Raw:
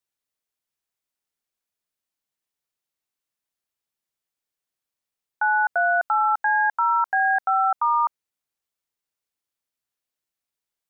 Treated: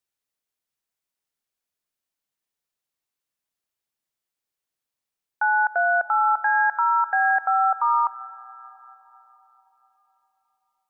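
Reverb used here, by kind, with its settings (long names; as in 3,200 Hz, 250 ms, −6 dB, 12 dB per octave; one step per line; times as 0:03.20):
comb and all-pass reverb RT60 4.8 s, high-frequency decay 0.3×, pre-delay 20 ms, DRR 16 dB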